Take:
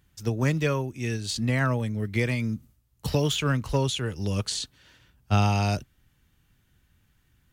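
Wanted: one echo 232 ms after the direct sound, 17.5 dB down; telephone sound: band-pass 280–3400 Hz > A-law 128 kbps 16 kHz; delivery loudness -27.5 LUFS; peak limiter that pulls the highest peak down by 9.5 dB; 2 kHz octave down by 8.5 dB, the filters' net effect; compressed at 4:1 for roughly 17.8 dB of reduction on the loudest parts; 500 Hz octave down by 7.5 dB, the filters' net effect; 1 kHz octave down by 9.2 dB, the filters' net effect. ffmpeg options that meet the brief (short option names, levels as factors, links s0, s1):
-af "equalizer=f=500:t=o:g=-6,equalizer=f=1000:t=o:g=-8.5,equalizer=f=2000:t=o:g=-7.5,acompressor=threshold=0.00891:ratio=4,alimiter=level_in=4.47:limit=0.0631:level=0:latency=1,volume=0.224,highpass=280,lowpass=3400,aecho=1:1:232:0.133,volume=18.8" -ar 16000 -c:a pcm_alaw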